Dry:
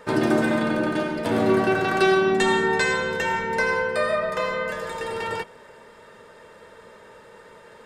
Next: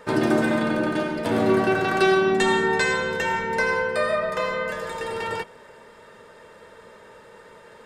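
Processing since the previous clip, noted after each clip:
no processing that can be heard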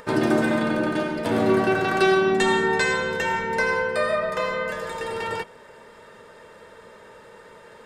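upward compression, threshold −43 dBFS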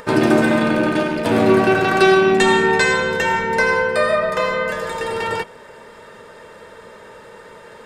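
loose part that buzzes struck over −30 dBFS, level −28 dBFS
level +6 dB

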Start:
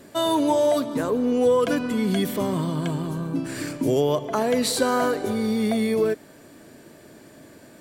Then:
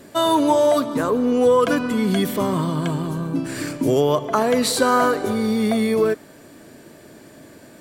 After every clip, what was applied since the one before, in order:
dynamic equaliser 1,200 Hz, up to +6 dB, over −41 dBFS, Q 2.3
level +3 dB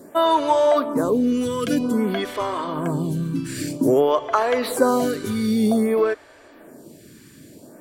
phaser with staggered stages 0.52 Hz
level +2 dB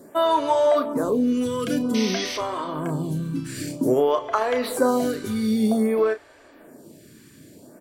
sound drawn into the spectrogram noise, 0:01.94–0:02.38, 1,800–6,300 Hz −29 dBFS
double-tracking delay 32 ms −10 dB
level −3 dB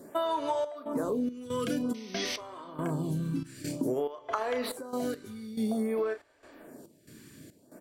downward compressor 5 to 1, threshold −25 dBFS, peak gain reduction 10 dB
gate pattern "xxx.xx.xx.x.." 70 BPM −12 dB
level −2.5 dB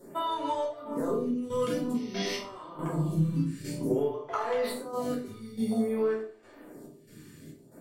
tuned comb filter 400 Hz, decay 0.39 s, harmonics odd, mix 70%
rectangular room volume 390 cubic metres, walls furnished, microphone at 4.5 metres
level +2.5 dB

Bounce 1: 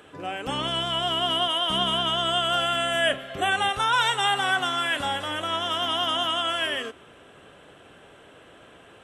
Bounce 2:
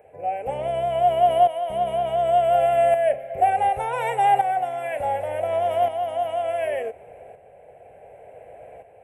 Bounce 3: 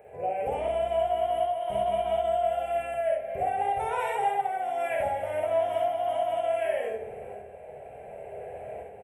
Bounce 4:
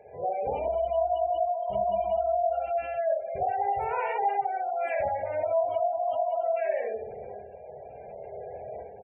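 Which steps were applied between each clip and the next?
drawn EQ curve 110 Hz 0 dB, 310 Hz −14 dB, 480 Hz +7 dB, 750 Hz +10 dB, 1,200 Hz −21 dB, 2,300 Hz −1 dB, 3,300 Hz −27 dB, 5,900 Hz −23 dB, 11,000 Hz −3 dB; shaped tremolo saw up 0.68 Hz, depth 60%; level +4.5 dB
downward compressor 6 to 1, threshold −29 dBFS, peak gain reduction 16 dB; ambience of single reflections 50 ms −4 dB, 64 ms −3 dB; on a send at −5.5 dB: convolution reverb RT60 1.0 s, pre-delay 3 ms
gate on every frequency bin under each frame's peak −25 dB strong

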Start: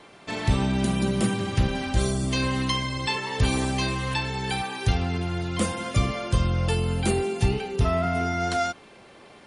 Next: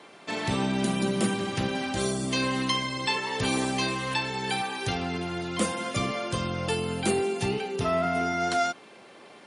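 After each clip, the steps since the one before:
high-pass filter 190 Hz 12 dB per octave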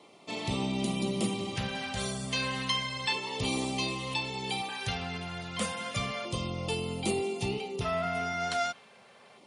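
low-shelf EQ 65 Hz +7.5 dB
auto-filter notch square 0.32 Hz 320–1,600 Hz
dynamic equaliser 3,100 Hz, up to +4 dB, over −42 dBFS, Q 1
level −5 dB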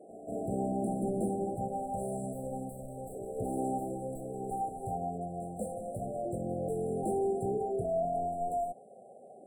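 mid-hump overdrive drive 21 dB, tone 1,500 Hz, clips at −17 dBFS
brick-wall band-stop 800–7,400 Hz
echo ahead of the sound 190 ms −13.5 dB
level −3.5 dB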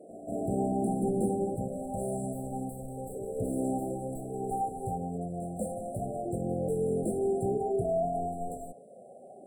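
on a send at −9 dB: resonant band-pass 400 Hz, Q 1.6 + convolution reverb, pre-delay 3 ms
on the sum: phaser whose notches keep moving one way rising 0.56 Hz
level +4 dB

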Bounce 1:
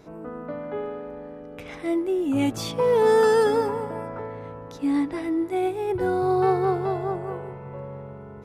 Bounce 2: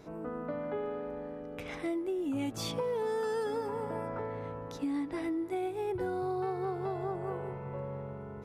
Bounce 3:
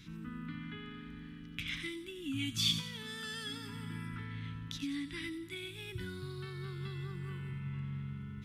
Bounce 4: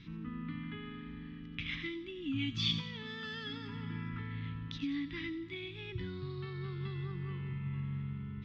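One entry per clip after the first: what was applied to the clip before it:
downward compressor 6 to 1, threshold −29 dBFS, peak gain reduction 13 dB; level −2.5 dB
Chebyshev band-stop filter 190–2,000 Hz, order 2; parametric band 3,300 Hz +10.5 dB 0.58 octaves; delay with a high-pass on its return 90 ms, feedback 42%, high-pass 4,800 Hz, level −5.5 dB; level +3 dB
Bessel low-pass filter 3,100 Hz, order 8; notch filter 1,500 Hz, Q 8.8; level +2 dB

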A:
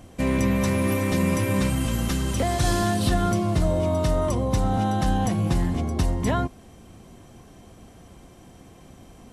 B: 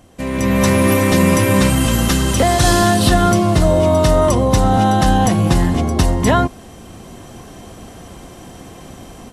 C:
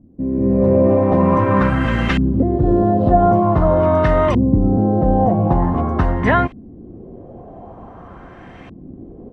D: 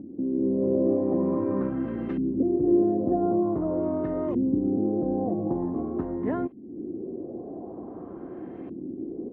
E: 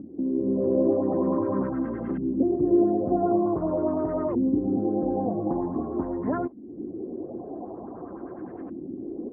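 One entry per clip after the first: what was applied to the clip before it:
low-shelf EQ 280 Hz −4.5 dB; notch filter 2,300 Hz, Q 19; automatic gain control gain up to 13 dB; level +1 dB
auto-filter low-pass saw up 0.46 Hz 240–2,400 Hz; level −2.5 dB
upward compression, threshold −16 dBFS; resonant band-pass 330 Hz, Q 2.9; level −3 dB
flanger 1.9 Hz, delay 0.5 ms, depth 3.6 ms, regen −46%; auto-filter low-pass sine 9.8 Hz 790–1,700 Hz; level +3.5 dB

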